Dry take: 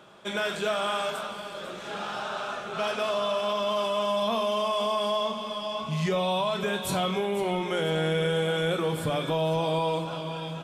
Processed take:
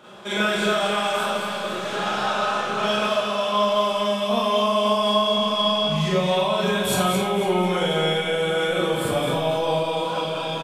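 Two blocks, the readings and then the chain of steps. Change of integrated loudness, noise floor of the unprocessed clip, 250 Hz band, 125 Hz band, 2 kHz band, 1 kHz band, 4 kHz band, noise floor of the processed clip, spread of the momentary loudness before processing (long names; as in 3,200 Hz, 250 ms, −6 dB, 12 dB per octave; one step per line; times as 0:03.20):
+6.5 dB, −38 dBFS, +6.5 dB, +3.5 dB, +7.0 dB, +6.5 dB, +8.0 dB, −28 dBFS, 8 LU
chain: downward compressor, threshold −28 dBFS, peak gain reduction 5.5 dB
on a send: single-tap delay 216 ms −6.5 dB
on the sum: four-comb reverb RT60 0.5 s, combs from 30 ms, DRR −7 dB
level +1.5 dB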